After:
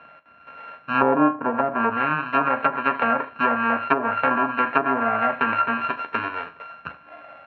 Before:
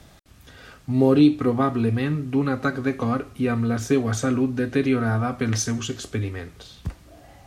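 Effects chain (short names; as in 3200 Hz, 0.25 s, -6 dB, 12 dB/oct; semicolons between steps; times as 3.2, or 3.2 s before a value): sample sorter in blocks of 32 samples; speaker cabinet 350–2700 Hz, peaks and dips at 360 Hz -9 dB, 630 Hz +8 dB, 1000 Hz +5 dB, 1600 Hz +9 dB, 2400 Hz +6 dB; on a send: early reflections 13 ms -9.5 dB, 38 ms -15.5 dB, 76 ms -17 dB; on the sum: treble ducked by the level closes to 640 Hz, closed at -14.5 dBFS; gain +2.5 dB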